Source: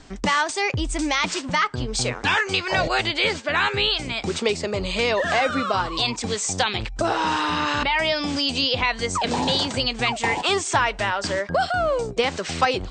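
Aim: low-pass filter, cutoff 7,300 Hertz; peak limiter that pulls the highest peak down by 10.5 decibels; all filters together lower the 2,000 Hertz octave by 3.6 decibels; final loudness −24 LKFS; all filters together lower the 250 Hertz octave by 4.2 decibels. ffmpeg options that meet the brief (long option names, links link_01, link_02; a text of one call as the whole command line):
ffmpeg -i in.wav -af "lowpass=7300,equalizer=frequency=250:width_type=o:gain=-5.5,equalizer=frequency=2000:width_type=o:gain=-4.5,volume=4.5dB,alimiter=limit=-14.5dB:level=0:latency=1" out.wav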